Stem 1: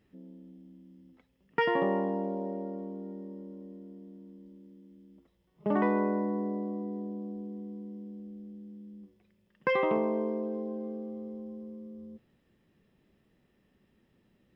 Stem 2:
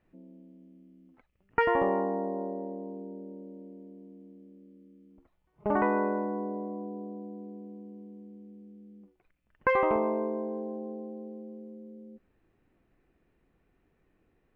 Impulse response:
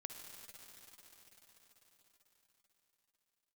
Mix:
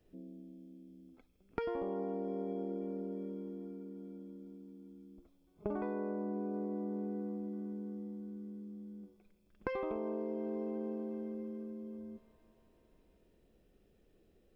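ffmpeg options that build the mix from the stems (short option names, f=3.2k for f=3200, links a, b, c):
-filter_complex "[0:a]bandreject=f=770:w=14,volume=-4dB,asplit=2[a][b];[b]volume=-4.5dB[c];[1:a]volume=1dB,asplit=2[d][e];[e]volume=-6dB[f];[2:a]atrim=start_sample=2205[g];[c][f]amix=inputs=2:normalize=0[h];[h][g]afir=irnorm=-1:irlink=0[i];[a][d][i]amix=inputs=3:normalize=0,equalizer=f=125:t=o:w=1:g=-7,equalizer=f=250:t=o:w=1:g=-5,equalizer=f=500:t=o:w=1:g=4,equalizer=f=1k:t=o:w=1:g=-11,equalizer=f=2k:t=o:w=1:g=-9,acompressor=threshold=-34dB:ratio=12"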